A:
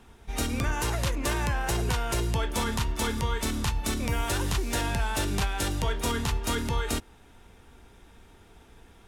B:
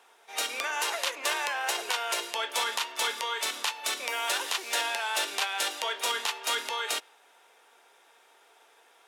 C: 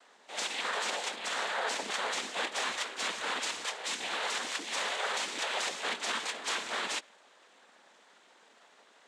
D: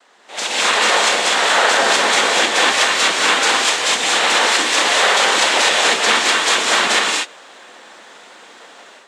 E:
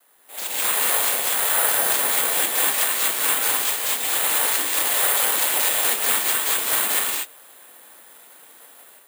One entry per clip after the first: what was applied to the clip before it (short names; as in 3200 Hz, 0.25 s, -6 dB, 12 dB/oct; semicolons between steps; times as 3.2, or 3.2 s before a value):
HPF 510 Hz 24 dB/oct; dynamic EQ 3100 Hz, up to +6 dB, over -47 dBFS, Q 0.86
limiter -22.5 dBFS, peak gain reduction 8.5 dB; noise vocoder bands 6
non-linear reverb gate 0.27 s rising, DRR -1.5 dB; AGC gain up to 9 dB; gain +7 dB
careless resampling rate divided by 4×, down filtered, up zero stuff; gain -11.5 dB